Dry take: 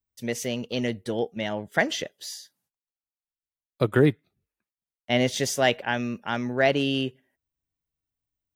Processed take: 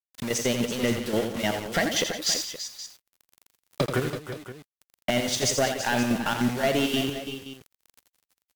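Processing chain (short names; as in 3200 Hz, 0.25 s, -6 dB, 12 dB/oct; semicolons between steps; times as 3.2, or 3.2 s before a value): recorder AGC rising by 22 dB/s; LPF 8700 Hz 24 dB/oct; low-pass opened by the level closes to 2600 Hz, open at -21 dBFS; high shelf 4500 Hz +7 dB; compressor 4:1, threshold -24 dBFS, peak gain reduction 10.5 dB; step gate "xxx.x.x.x.." 199 bpm -12 dB; crackle 18/s -44 dBFS; bit-crush 7-bit; soft clip -24 dBFS, distortion -10 dB; tapped delay 83/171/331/341/523 ms -7.5/-14/-12/-16/-14.5 dB; gain +7 dB; Vorbis 96 kbps 48000 Hz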